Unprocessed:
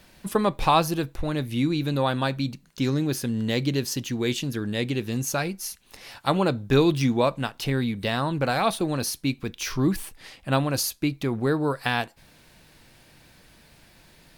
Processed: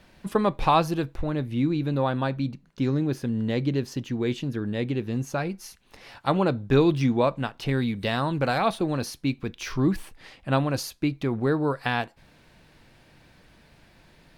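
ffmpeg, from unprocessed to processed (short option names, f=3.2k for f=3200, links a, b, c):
-af "asetnsamples=n=441:p=0,asendcmd='1.23 lowpass f 1400;5.5 lowpass f 2400;7.69 lowpass f 6000;8.58 lowpass f 2800',lowpass=f=2.9k:p=1"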